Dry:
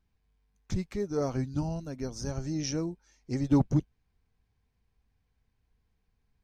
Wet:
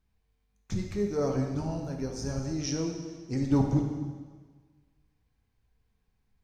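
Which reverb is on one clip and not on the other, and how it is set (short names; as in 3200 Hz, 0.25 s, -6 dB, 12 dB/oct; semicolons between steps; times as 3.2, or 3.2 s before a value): plate-style reverb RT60 1.5 s, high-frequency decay 0.95×, DRR 1.5 dB; gain -1 dB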